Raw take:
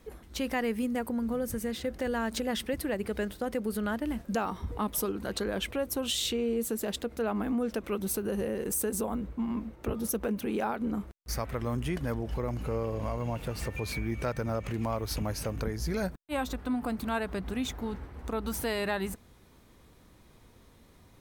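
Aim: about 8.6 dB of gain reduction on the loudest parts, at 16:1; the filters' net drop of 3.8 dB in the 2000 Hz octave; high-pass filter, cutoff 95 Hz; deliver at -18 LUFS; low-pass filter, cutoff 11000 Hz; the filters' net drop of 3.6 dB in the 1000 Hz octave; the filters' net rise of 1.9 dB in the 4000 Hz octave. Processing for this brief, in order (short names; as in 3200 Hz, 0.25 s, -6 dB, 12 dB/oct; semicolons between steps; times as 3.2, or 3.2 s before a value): HPF 95 Hz; LPF 11000 Hz; bell 1000 Hz -4 dB; bell 2000 Hz -4.5 dB; bell 4000 Hz +4 dB; compressor 16:1, threshold -35 dBFS; gain +22 dB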